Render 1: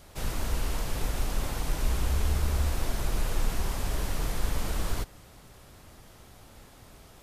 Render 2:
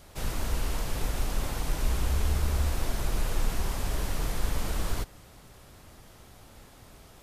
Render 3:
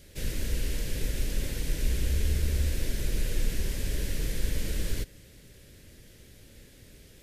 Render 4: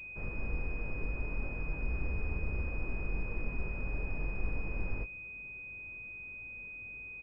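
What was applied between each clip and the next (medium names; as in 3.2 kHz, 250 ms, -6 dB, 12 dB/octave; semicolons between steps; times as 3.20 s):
no audible change
high-order bell 950 Hz -16 dB 1.2 oct
doubling 21 ms -7 dB; class-D stage that switches slowly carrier 2.5 kHz; trim -7 dB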